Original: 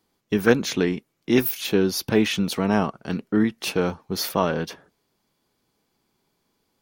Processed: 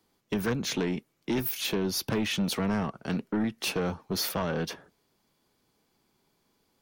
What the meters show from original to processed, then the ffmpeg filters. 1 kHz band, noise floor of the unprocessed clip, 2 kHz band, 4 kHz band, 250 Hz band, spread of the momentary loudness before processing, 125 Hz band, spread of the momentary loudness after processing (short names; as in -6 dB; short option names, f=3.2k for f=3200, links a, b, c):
-7.5 dB, -74 dBFS, -7.5 dB, -3.5 dB, -7.5 dB, 7 LU, -5.0 dB, 6 LU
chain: -filter_complex "[0:a]acrossover=split=160[a][b];[b]acompressor=threshold=-23dB:ratio=5[c];[a][c]amix=inputs=2:normalize=0,asoftclip=type=tanh:threshold=-22dB"